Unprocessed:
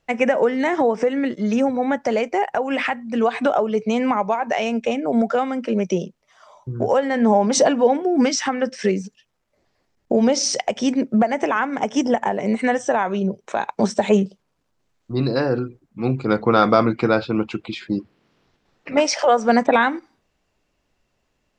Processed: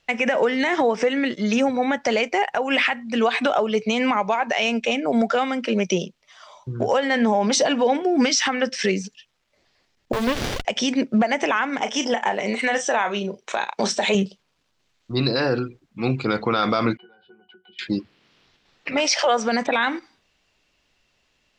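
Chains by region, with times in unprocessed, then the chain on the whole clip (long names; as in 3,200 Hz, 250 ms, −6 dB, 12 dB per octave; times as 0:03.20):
0:10.13–0:10.65: hold until the input has moved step −31 dBFS + low-shelf EQ 340 Hz −8.5 dB + windowed peak hold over 33 samples
0:11.81–0:14.15: low-shelf EQ 190 Hz −11.5 dB + double-tracking delay 34 ms −11.5 dB
0:16.97–0:17.79: downward compressor 8 to 1, threshold −29 dBFS + band-pass filter 370–4,100 Hz + resonances in every octave F#, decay 0.19 s
whole clip: parametric band 3,500 Hz +12 dB 2.3 octaves; brickwall limiter −9 dBFS; level −1.5 dB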